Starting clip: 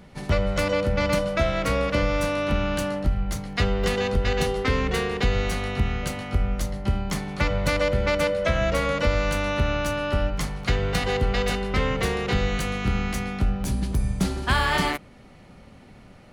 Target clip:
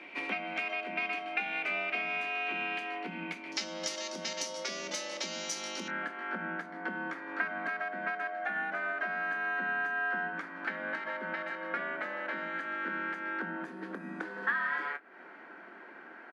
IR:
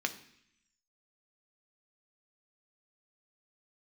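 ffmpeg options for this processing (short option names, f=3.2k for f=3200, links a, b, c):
-filter_complex "[0:a]highpass=46,aemphasis=mode=production:type=bsi,acompressor=threshold=-35dB:ratio=10,asetnsamples=n=441:p=0,asendcmd='3.52 lowpass f 5700;5.88 lowpass f 1500',lowpass=f=2.3k:t=q:w=5.4,afreqshift=130,asplit=2[a][b];[b]adelay=25,volume=-13dB[c];[a][c]amix=inputs=2:normalize=0,volume=-1.5dB"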